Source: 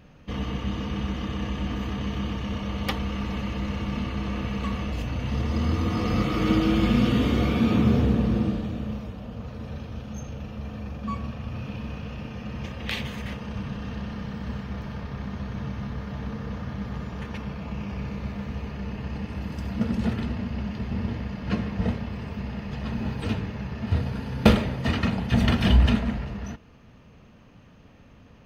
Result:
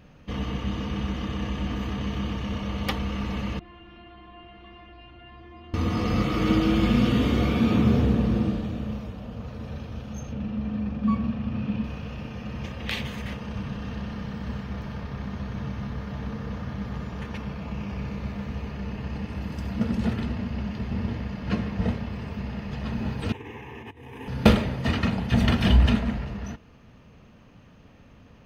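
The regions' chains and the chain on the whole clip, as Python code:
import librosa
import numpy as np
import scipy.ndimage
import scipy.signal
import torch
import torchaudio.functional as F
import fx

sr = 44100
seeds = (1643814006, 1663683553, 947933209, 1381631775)

y = fx.chain(x, sr, fx.lowpass(hz=3200.0, slope=24),
    fx.comb_fb(f0_hz=350.0, decay_s=0.31, harmonics='all', damping=0.0, mix_pct=100),
    fx.env_flatten(amount_pct=50), at=(3.59, 5.74))
y = fx.chain(y, sr, fx.lowpass(hz=4300.0, slope=12),
    fx.peak_eq(hz=220.0, db=11.0, octaves=0.61), at=(10.32, 11.84))
y = fx.chain(y, sr, fx.over_compress(threshold_db=-32.0, ratio=-1.0),
    fx.highpass(hz=150.0, slope=12),
    fx.fixed_phaser(hz=920.0, stages=8), at=(23.32, 24.28))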